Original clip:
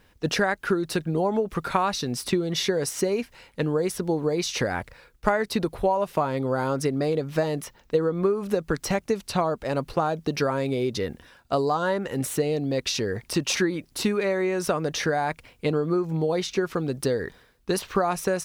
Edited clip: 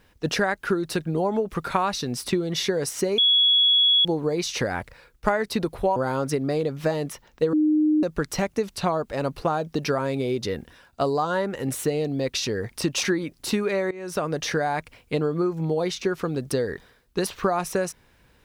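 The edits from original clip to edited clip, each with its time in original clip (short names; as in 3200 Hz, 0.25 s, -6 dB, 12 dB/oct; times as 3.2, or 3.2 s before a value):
3.18–4.05 bleep 3360 Hz -15 dBFS
5.96–6.48 cut
8.05–8.55 bleep 306 Hz -16.5 dBFS
14.43–14.79 fade in, from -20.5 dB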